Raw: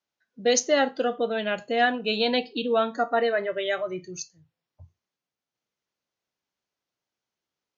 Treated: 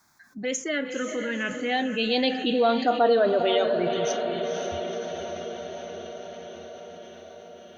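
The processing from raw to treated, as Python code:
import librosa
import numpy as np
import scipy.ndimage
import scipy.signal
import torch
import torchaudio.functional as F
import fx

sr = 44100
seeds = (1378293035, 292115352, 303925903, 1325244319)

p1 = fx.doppler_pass(x, sr, speed_mps=16, closest_m=7.7, pass_at_s=3.14)
p2 = fx.env_phaser(p1, sr, low_hz=500.0, high_hz=2200.0, full_db=-23.0)
p3 = p2 + fx.echo_diffused(p2, sr, ms=497, feedback_pct=50, wet_db=-10, dry=0)
p4 = fx.env_flatten(p3, sr, amount_pct=50)
y = p4 * 10.0 ** (4.0 / 20.0)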